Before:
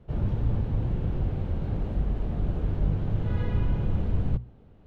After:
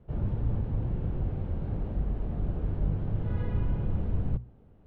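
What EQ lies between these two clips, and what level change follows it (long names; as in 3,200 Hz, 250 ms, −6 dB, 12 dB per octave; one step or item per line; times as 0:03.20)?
low-pass filter 1,900 Hz 6 dB per octave
−3.0 dB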